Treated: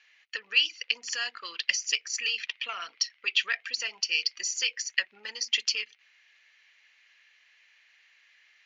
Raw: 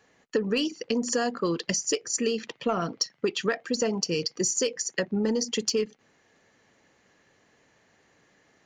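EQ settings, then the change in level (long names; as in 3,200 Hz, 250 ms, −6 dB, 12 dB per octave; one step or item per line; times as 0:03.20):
high-pass with resonance 2,400 Hz, resonance Q 2.5
low-pass filter 5,600 Hz 24 dB per octave
high-shelf EQ 4,300 Hz −4.5 dB
+3.5 dB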